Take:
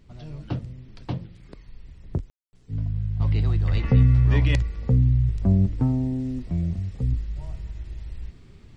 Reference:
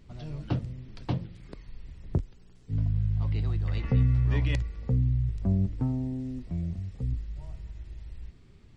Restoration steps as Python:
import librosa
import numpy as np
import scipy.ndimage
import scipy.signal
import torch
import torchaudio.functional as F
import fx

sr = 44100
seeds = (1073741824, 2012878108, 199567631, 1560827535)

y = fx.highpass(x, sr, hz=140.0, slope=24, at=(3.7, 3.82), fade=0.02)
y = fx.fix_ambience(y, sr, seeds[0], print_start_s=8.25, print_end_s=8.75, start_s=2.3, end_s=2.53)
y = fx.gain(y, sr, db=fx.steps((0.0, 0.0), (3.2, -6.5)))